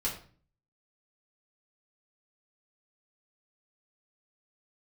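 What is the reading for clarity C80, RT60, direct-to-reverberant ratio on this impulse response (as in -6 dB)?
12.0 dB, 0.45 s, -5.0 dB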